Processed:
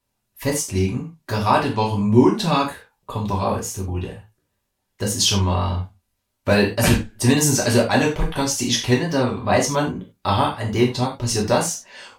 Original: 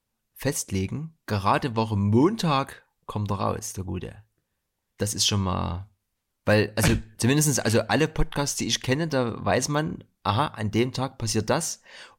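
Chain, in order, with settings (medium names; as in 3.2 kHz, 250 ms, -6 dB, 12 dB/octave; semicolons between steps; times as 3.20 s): wow and flutter 59 cents; gated-style reverb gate 120 ms falling, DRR -3 dB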